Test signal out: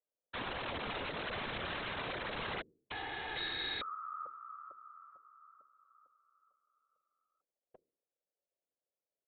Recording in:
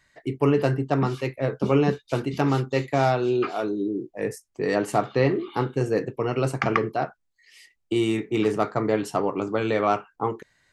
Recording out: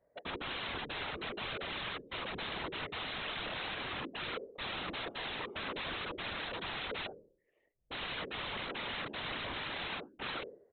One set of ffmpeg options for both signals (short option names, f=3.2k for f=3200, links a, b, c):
-af "lowpass=f=550:t=q:w=5.9,equalizer=f=61:t=o:w=2.9:g=-13,bandreject=f=75.97:t=h:w=4,bandreject=f=151.94:t=h:w=4,bandreject=f=227.91:t=h:w=4,bandreject=f=303.88:t=h:w=4,bandreject=f=379.85:t=h:w=4,bandreject=f=455.82:t=h:w=4,aresample=8000,aeval=exprs='(mod(33.5*val(0)+1,2)-1)/33.5':c=same,aresample=44100,afftfilt=real='hypot(re,im)*cos(2*PI*random(0))':imag='hypot(re,im)*sin(2*PI*random(1))':win_size=512:overlap=0.75,volume=1.5dB"